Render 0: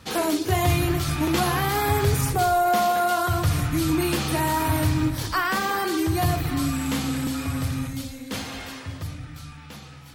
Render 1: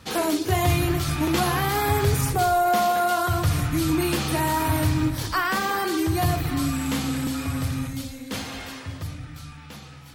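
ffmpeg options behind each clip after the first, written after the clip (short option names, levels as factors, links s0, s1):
-af anull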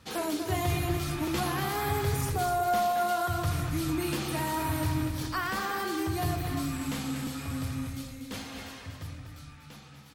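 -af "aecho=1:1:242|484|726:0.422|0.0886|0.0186,volume=0.398"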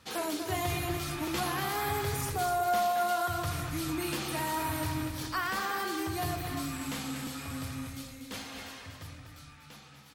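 -af "lowshelf=f=360:g=-6.5"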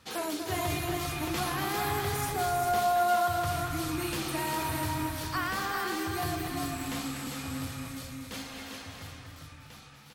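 -af "aecho=1:1:399:0.562"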